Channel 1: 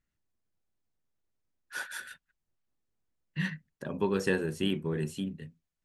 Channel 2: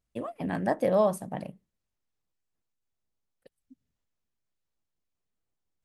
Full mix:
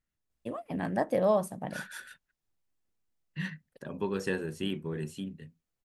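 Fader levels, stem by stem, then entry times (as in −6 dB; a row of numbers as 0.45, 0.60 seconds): −3.5, −2.0 decibels; 0.00, 0.30 seconds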